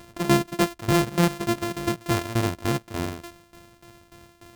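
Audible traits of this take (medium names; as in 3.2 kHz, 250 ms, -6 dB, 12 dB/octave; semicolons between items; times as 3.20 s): a buzz of ramps at a fixed pitch in blocks of 128 samples; tremolo saw down 3.4 Hz, depth 85%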